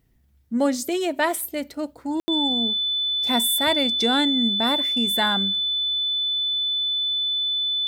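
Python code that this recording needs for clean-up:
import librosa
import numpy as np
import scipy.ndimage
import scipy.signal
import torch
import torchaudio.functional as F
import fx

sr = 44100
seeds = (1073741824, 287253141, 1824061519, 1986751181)

y = fx.notch(x, sr, hz=3500.0, q=30.0)
y = fx.fix_ambience(y, sr, seeds[0], print_start_s=0.0, print_end_s=0.5, start_s=2.2, end_s=2.28)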